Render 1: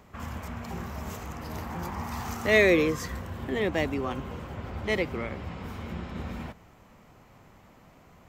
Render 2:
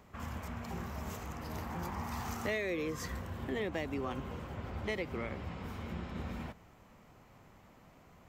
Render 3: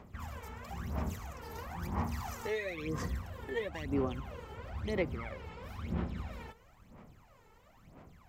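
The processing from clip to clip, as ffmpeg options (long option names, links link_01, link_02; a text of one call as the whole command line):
ffmpeg -i in.wav -af "acompressor=threshold=-27dB:ratio=10,volume=-4.5dB" out.wav
ffmpeg -i in.wav -af "aphaser=in_gain=1:out_gain=1:delay=2.3:decay=0.74:speed=1:type=sinusoidal,volume=-5dB" out.wav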